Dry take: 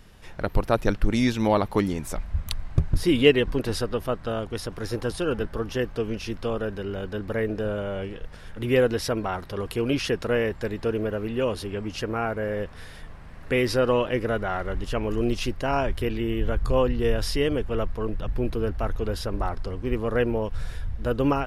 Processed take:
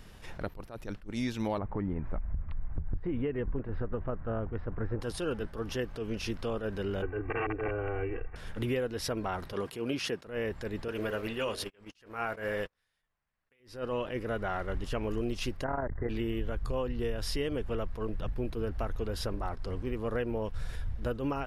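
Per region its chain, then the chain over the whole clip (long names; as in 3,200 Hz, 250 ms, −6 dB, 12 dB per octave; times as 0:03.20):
0:01.58–0:05.01: low-pass filter 1,900 Hz 24 dB per octave + low-shelf EQ 130 Hz +9.5 dB + downward compressor, threshold −18 dBFS
0:07.02–0:08.36: wrap-around overflow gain 20.5 dB + Butterworth low-pass 2,700 Hz 96 dB per octave + comb filter 2.6 ms, depth 100%
0:09.53–0:10.26: high-pass filter 140 Hz + one half of a high-frequency compander encoder only
0:10.88–0:13.60: tilt shelving filter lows −6 dB, about 680 Hz + hum removal 48.95 Hz, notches 15 + noise gate −35 dBFS, range −39 dB
0:15.64–0:16.09: linear-phase brick-wall low-pass 2,100 Hz + saturating transformer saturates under 140 Hz
whole clip: downward compressor, threshold −29 dBFS; level that may rise only so fast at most 150 dB per second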